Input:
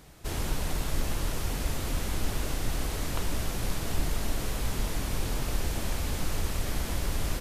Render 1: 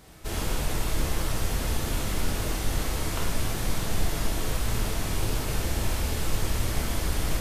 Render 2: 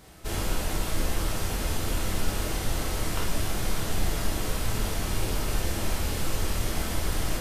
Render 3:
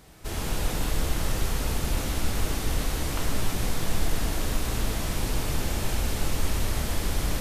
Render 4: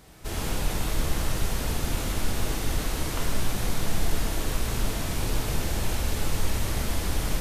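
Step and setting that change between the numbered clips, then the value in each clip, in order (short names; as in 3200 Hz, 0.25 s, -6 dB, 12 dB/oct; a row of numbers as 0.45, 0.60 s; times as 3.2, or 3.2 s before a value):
non-linear reverb, gate: 130, 80, 340, 220 ms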